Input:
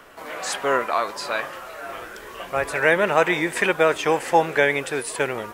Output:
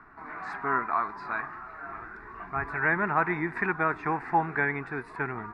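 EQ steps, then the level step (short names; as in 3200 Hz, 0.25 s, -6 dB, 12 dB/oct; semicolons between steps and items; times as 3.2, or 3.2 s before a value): air absorption 400 m; high shelf 6500 Hz -10 dB; fixed phaser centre 1300 Hz, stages 4; 0.0 dB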